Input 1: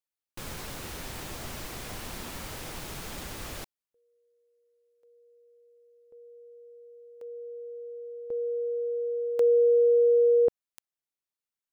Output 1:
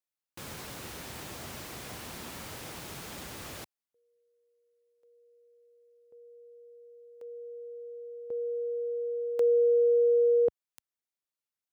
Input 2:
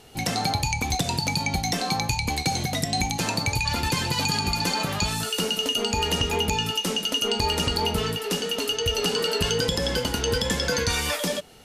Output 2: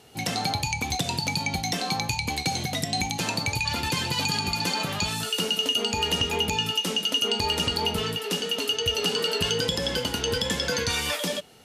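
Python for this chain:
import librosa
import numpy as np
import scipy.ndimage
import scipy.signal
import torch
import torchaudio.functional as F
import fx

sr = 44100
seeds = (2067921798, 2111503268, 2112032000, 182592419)

y = scipy.signal.sosfilt(scipy.signal.butter(2, 77.0, 'highpass', fs=sr, output='sos'), x)
y = fx.dynamic_eq(y, sr, hz=3100.0, q=1.8, threshold_db=-40.0, ratio=4.0, max_db=4)
y = y * 10.0 ** (-2.5 / 20.0)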